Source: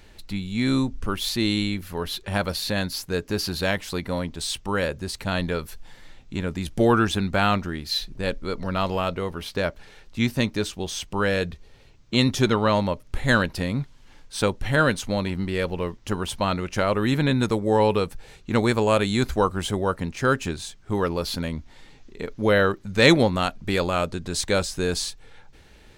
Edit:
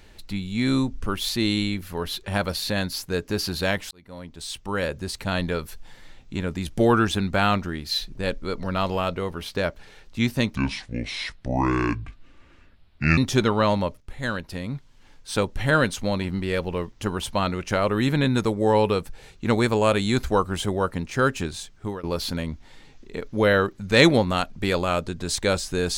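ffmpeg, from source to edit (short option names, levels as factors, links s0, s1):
-filter_complex "[0:a]asplit=6[s0][s1][s2][s3][s4][s5];[s0]atrim=end=3.91,asetpts=PTS-STARTPTS,afade=t=out:st=3.906:d=0.004:c=hsin[s6];[s1]atrim=start=3.91:end=10.554,asetpts=PTS-STARTPTS,afade=t=in:d=1.07[s7];[s2]atrim=start=10.55:end=12.23,asetpts=PTS-STARTPTS,asetrate=28224,aresample=44100,atrim=end_sample=115762,asetpts=PTS-STARTPTS[s8];[s3]atrim=start=12.226:end=13.06,asetpts=PTS-STARTPTS,afade=t=out:st=0.83:d=0.004:c=hsin:silence=0.251189[s9];[s4]atrim=start=13.06:end=21.09,asetpts=PTS-STARTPTS,afade=t=in:d=1.6:silence=0.251189,afade=t=out:st=7.76:d=0.27:silence=0.0707946[s10];[s5]atrim=start=21.09,asetpts=PTS-STARTPTS,afade=t=in:d=0.004:c=hsin:silence=0.0707946[s11];[s6][s7]concat=n=2:v=0:a=1[s12];[s12][s8]acrossfade=d=0.004:c1=hsin:c2=hsin[s13];[s9][s10][s11]concat=n=3:v=0:a=1[s14];[s13][s14]acrossfade=d=0.004:c1=hsin:c2=hsin"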